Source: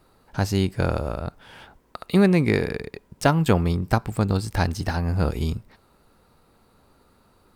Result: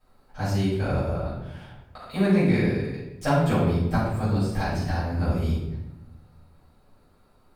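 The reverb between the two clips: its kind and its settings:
rectangular room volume 320 cubic metres, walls mixed, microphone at 6.3 metres
level −18 dB

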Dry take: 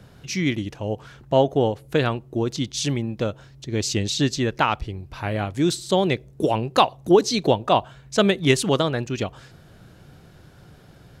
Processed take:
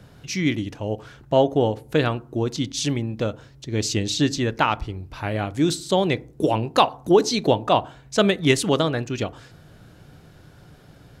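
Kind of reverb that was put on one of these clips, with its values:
feedback delay network reverb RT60 0.45 s, low-frequency decay 1.3×, high-frequency decay 0.35×, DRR 16 dB

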